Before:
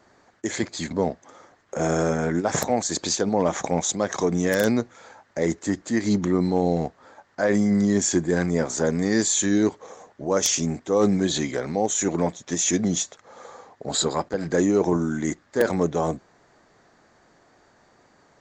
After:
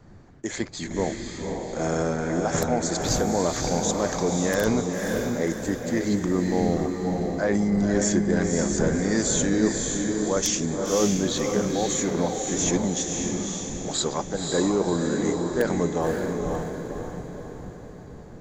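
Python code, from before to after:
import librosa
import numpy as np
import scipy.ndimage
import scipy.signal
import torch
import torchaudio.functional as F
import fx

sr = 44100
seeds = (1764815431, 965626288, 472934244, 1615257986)

y = fx.dmg_wind(x, sr, seeds[0], corner_hz=210.0, level_db=-38.0)
y = fx.echo_diffused(y, sr, ms=540, feedback_pct=49, wet_db=-3)
y = F.gain(torch.from_numpy(y), -3.0).numpy()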